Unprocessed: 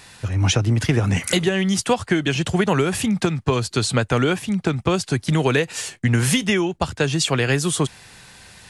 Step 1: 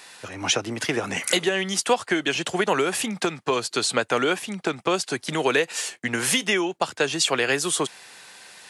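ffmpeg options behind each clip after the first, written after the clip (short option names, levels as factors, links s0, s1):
-af "highpass=370"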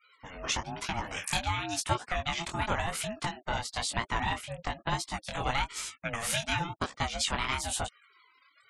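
-af "afftfilt=real='re*gte(hypot(re,im),0.0126)':imag='im*gte(hypot(re,im),0.0126)':win_size=1024:overlap=0.75,flanger=delay=16.5:depth=7.5:speed=1,aeval=exprs='val(0)*sin(2*PI*430*n/s+430*0.2/1.2*sin(2*PI*1.2*n/s))':c=same,volume=0.75"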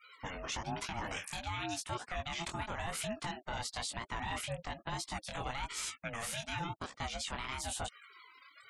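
-af "areverse,acompressor=threshold=0.0141:ratio=16,areverse,alimiter=level_in=2.66:limit=0.0631:level=0:latency=1:release=86,volume=0.376,volume=1.78"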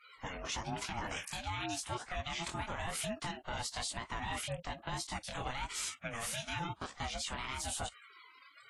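-ar 44100 -c:a libvorbis -b:a 32k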